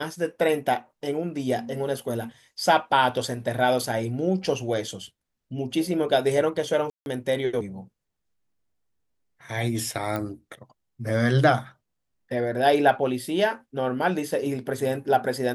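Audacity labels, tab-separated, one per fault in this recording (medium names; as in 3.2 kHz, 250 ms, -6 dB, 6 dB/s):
6.900000	7.060000	dropout 161 ms
10.160000	10.160000	pop -16 dBFS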